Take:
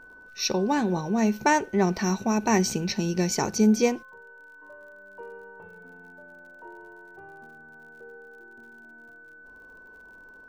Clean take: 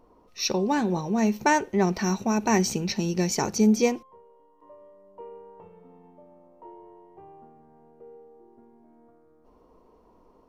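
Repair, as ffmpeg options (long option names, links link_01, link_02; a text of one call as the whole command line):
ffmpeg -i in.wav -af "adeclick=threshold=4,bandreject=frequency=1500:width=30" out.wav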